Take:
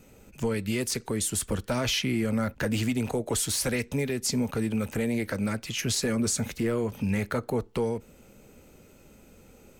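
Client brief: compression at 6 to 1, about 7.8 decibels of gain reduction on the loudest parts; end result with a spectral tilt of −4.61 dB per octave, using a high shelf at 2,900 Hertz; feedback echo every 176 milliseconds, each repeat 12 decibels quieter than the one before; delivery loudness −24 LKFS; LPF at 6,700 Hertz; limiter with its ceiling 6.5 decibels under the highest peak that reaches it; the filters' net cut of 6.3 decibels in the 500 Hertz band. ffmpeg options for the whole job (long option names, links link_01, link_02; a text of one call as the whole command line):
ffmpeg -i in.wav -af "lowpass=6700,equalizer=frequency=500:width_type=o:gain=-7.5,highshelf=frequency=2900:gain=-5.5,acompressor=threshold=-33dB:ratio=6,alimiter=level_in=6dB:limit=-24dB:level=0:latency=1,volume=-6dB,aecho=1:1:176|352|528:0.251|0.0628|0.0157,volume=15dB" out.wav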